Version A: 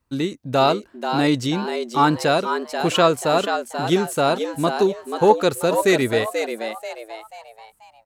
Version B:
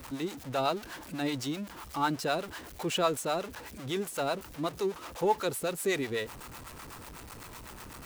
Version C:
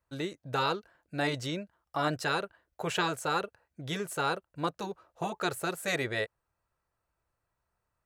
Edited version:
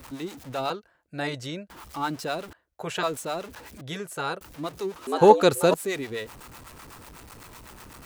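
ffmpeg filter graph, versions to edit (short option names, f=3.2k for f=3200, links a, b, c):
-filter_complex "[2:a]asplit=3[a][b][c];[1:a]asplit=5[d][e][f][g][h];[d]atrim=end=0.702[i];[a]atrim=start=0.698:end=1.702[j];[e]atrim=start=1.698:end=2.532[k];[b]atrim=start=2.528:end=3.032[l];[f]atrim=start=3.028:end=3.812[m];[c]atrim=start=3.808:end=4.412[n];[g]atrim=start=4.408:end=5.072[o];[0:a]atrim=start=5.068:end=5.742[p];[h]atrim=start=5.738[q];[i][j]acrossfade=d=0.004:c1=hsin:c2=hsin[r];[r][k]acrossfade=d=0.004:c1=hsin:c2=hsin[s];[s][l]acrossfade=d=0.004:c1=hsin:c2=hsin[t];[t][m]acrossfade=d=0.004:c1=hsin:c2=hsin[u];[u][n]acrossfade=d=0.004:c1=hsin:c2=hsin[v];[v][o]acrossfade=d=0.004:c1=hsin:c2=hsin[w];[w][p]acrossfade=d=0.004:c1=hsin:c2=hsin[x];[x][q]acrossfade=d=0.004:c1=hsin:c2=hsin"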